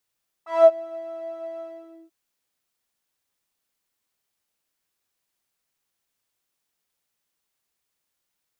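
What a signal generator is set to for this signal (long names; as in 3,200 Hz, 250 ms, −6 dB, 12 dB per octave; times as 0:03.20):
subtractive patch with pulse-width modulation E5, sub −8 dB, noise −18 dB, filter bandpass, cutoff 310 Hz, Q 8, filter envelope 2 octaves, filter decay 0.27 s, attack 183 ms, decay 0.06 s, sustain −19 dB, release 0.49 s, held 1.15 s, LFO 4.1 Hz, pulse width 38%, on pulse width 12%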